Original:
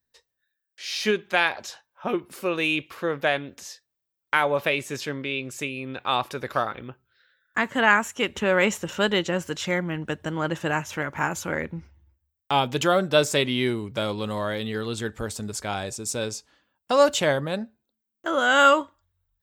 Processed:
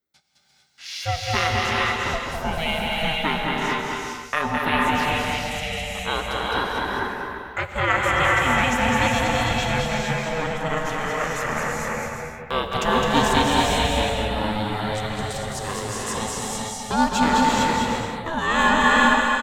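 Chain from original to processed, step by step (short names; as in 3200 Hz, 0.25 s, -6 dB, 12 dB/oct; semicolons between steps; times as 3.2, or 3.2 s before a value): bouncing-ball echo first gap 0.21 s, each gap 0.65×, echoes 5; ring modulator 320 Hz; non-linear reverb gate 0.48 s rising, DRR -2 dB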